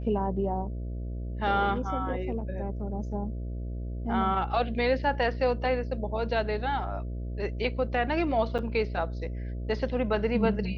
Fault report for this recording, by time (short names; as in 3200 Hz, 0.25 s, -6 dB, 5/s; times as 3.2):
buzz 60 Hz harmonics 11 -34 dBFS
8.58–8.59 gap 7.7 ms